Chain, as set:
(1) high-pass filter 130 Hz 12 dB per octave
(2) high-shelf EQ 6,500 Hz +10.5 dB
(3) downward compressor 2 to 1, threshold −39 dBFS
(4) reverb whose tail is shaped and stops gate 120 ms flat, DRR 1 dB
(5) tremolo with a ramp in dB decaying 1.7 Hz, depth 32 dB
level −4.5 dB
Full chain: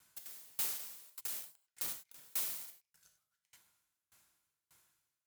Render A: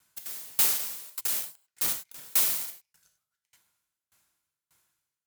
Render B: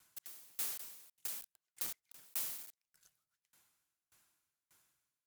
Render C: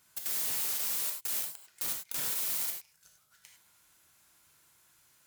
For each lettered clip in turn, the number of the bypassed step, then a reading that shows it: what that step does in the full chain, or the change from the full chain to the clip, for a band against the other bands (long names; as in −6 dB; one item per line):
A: 3, average gain reduction 12.0 dB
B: 4, change in crest factor +2.0 dB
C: 5, change in momentary loudness spread −6 LU